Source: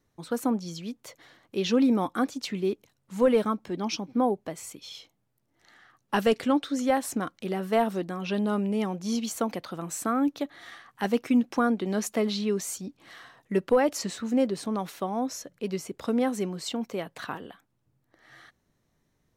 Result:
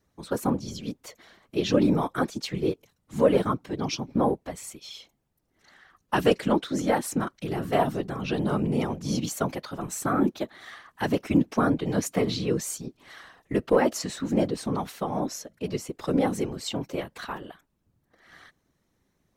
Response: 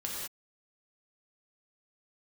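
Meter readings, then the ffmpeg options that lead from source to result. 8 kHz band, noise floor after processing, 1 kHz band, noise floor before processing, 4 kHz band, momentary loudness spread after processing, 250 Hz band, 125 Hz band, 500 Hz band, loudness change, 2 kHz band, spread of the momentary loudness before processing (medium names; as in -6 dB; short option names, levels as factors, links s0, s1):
+1.0 dB, -74 dBFS, +1.0 dB, -74 dBFS, +1.0 dB, 15 LU, 0.0 dB, +7.0 dB, +1.0 dB, +1.0 dB, +1.0 dB, 14 LU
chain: -af "afftfilt=real='hypot(re,im)*cos(2*PI*random(0))':imag='hypot(re,im)*sin(2*PI*random(1))':win_size=512:overlap=0.75,volume=2.24"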